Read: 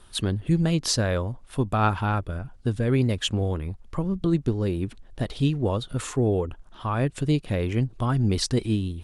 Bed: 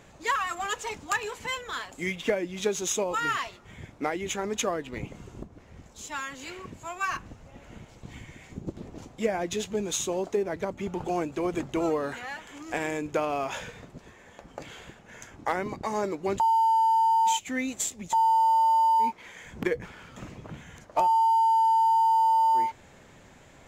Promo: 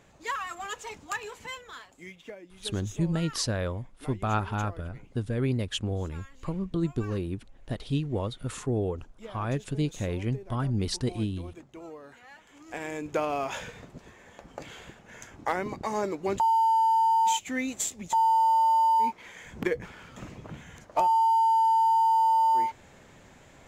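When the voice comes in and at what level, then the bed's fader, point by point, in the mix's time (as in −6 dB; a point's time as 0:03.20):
2.50 s, −5.5 dB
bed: 0:01.41 −5.5 dB
0:02.29 −17 dB
0:12.04 −17 dB
0:13.20 −0.5 dB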